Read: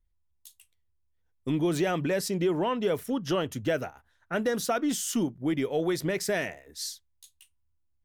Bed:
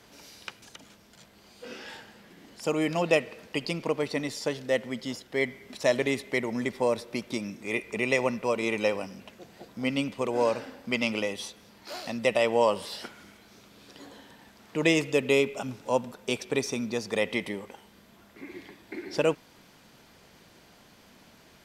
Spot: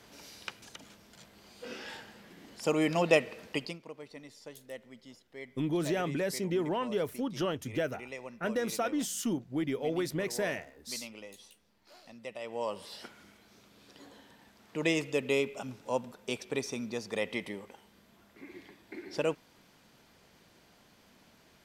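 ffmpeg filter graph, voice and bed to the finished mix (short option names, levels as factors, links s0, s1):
-filter_complex "[0:a]adelay=4100,volume=0.596[s0];[1:a]volume=3.55,afade=t=out:st=3.5:d=0.29:silence=0.141254,afade=t=in:st=12.4:d=0.72:silence=0.251189[s1];[s0][s1]amix=inputs=2:normalize=0"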